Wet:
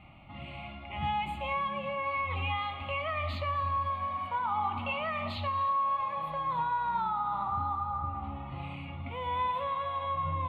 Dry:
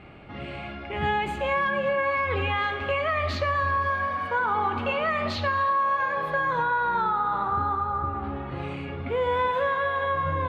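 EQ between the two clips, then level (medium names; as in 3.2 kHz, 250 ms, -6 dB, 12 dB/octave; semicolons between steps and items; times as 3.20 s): static phaser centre 1.6 kHz, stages 6; -4.0 dB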